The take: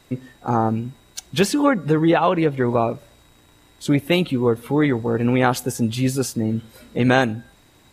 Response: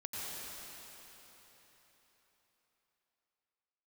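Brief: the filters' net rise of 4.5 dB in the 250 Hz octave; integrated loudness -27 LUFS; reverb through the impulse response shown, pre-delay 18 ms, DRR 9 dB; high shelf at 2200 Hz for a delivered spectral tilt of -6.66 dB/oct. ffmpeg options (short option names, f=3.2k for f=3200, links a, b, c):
-filter_complex "[0:a]equalizer=f=250:t=o:g=5.5,highshelf=f=2.2k:g=-3.5,asplit=2[a][b];[1:a]atrim=start_sample=2205,adelay=18[c];[b][c]afir=irnorm=-1:irlink=0,volume=-11dB[d];[a][d]amix=inputs=2:normalize=0,volume=-9.5dB"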